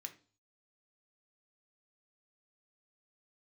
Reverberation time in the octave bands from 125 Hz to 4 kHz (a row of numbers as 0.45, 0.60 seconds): 0.65, 0.45, 0.40, 0.40, 0.35, 0.45 seconds